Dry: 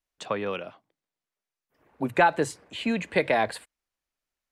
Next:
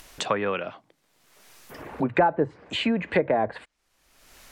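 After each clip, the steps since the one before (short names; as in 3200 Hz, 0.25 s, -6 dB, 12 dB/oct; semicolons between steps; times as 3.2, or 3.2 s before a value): treble ducked by the level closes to 720 Hz, closed at -21 dBFS; dynamic EQ 1700 Hz, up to +5 dB, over -43 dBFS, Q 1.1; upward compressor, threshold -25 dBFS; gain +2.5 dB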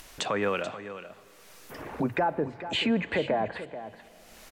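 limiter -17.5 dBFS, peak gain reduction 8.5 dB; echo 0.434 s -12.5 dB; plate-style reverb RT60 4.5 s, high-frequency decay 0.95×, DRR 20 dB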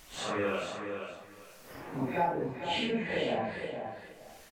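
phase scrambler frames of 0.2 s; echo 0.473 s -8.5 dB; gain -4 dB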